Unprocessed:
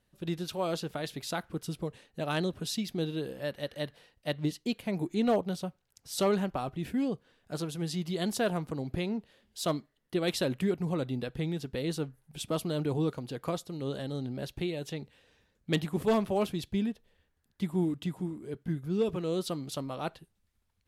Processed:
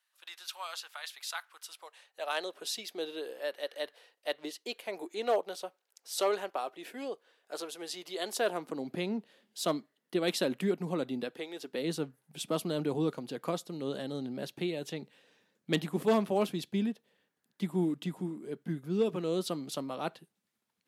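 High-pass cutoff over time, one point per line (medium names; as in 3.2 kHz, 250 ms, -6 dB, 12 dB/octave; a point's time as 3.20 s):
high-pass 24 dB/octave
1.58 s 1 kHz
2.65 s 400 Hz
8.24 s 400 Hz
8.92 s 190 Hz
11.25 s 190 Hz
11.48 s 460 Hz
11.89 s 170 Hz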